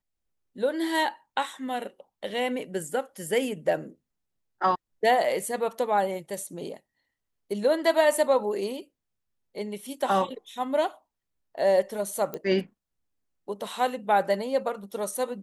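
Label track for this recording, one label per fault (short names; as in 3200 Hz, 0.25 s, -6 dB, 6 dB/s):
12.340000	12.340000	pop -18 dBFS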